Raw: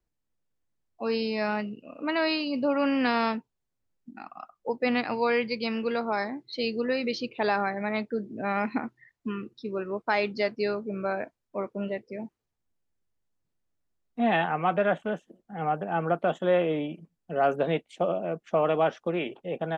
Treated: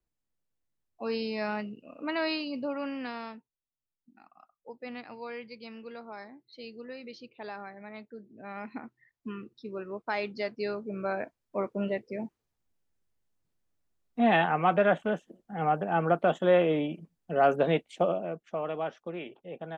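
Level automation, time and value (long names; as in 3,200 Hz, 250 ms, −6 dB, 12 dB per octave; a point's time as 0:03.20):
0:02.37 −4 dB
0:03.30 −15 dB
0:08.29 −15 dB
0:09.29 −6 dB
0:10.44 −6 dB
0:11.64 +1 dB
0:18.01 +1 dB
0:18.56 −9 dB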